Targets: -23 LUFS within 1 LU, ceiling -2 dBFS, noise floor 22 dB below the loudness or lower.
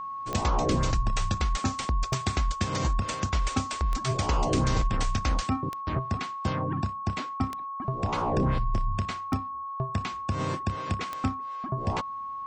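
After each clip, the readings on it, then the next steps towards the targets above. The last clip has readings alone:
clicks found 7; steady tone 1.1 kHz; tone level -33 dBFS; loudness -29.5 LUFS; peak level -12.5 dBFS; loudness target -23.0 LUFS
-> de-click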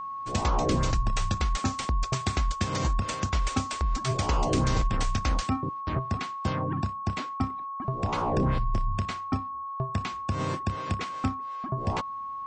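clicks found 0; steady tone 1.1 kHz; tone level -33 dBFS
-> band-stop 1.1 kHz, Q 30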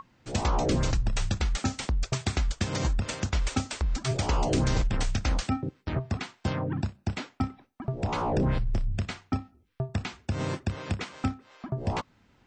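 steady tone not found; loudness -30.5 LUFS; peak level -13.0 dBFS; loudness target -23.0 LUFS
-> trim +7.5 dB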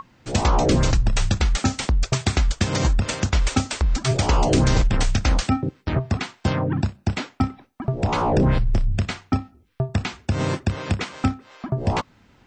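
loudness -23.0 LUFS; peak level -5.5 dBFS; noise floor -58 dBFS

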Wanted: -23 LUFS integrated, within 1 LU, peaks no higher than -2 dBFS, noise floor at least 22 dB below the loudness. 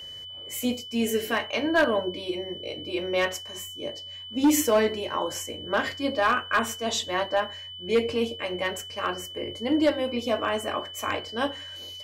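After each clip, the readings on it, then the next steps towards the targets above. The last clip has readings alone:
clipped samples 0.5%; clipping level -15.0 dBFS; steady tone 3 kHz; tone level -38 dBFS; loudness -27.0 LUFS; peak level -15.0 dBFS; loudness target -23.0 LUFS
-> clip repair -15 dBFS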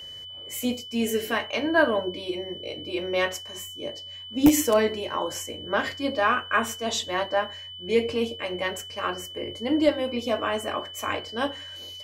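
clipped samples 0.0%; steady tone 3 kHz; tone level -38 dBFS
-> band-stop 3 kHz, Q 30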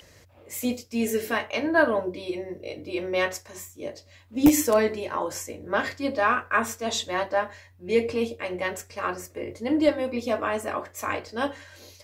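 steady tone not found; loudness -26.5 LUFS; peak level -6.0 dBFS; loudness target -23.0 LUFS
-> trim +3.5 dB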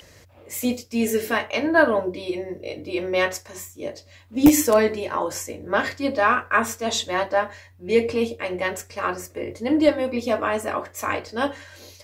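loudness -23.0 LUFS; peak level -2.5 dBFS; noise floor -51 dBFS

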